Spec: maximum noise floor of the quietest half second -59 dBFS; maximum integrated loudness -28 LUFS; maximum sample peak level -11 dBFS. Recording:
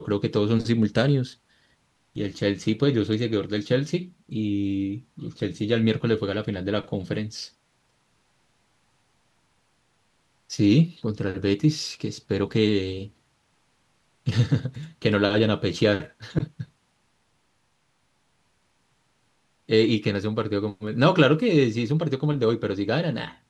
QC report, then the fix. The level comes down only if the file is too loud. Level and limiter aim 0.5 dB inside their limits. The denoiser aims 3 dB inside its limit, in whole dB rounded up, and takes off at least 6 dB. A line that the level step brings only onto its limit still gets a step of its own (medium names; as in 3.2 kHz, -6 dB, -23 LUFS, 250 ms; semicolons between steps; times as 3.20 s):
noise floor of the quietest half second -68 dBFS: pass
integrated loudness -24.5 LUFS: fail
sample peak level -4.5 dBFS: fail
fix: trim -4 dB; peak limiter -11.5 dBFS